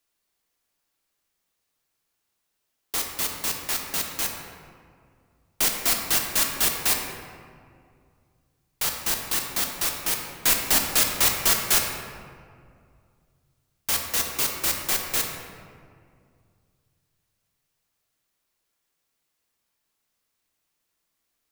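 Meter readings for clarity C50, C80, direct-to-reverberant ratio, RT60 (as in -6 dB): 3.5 dB, 5.0 dB, 1.5 dB, 2.2 s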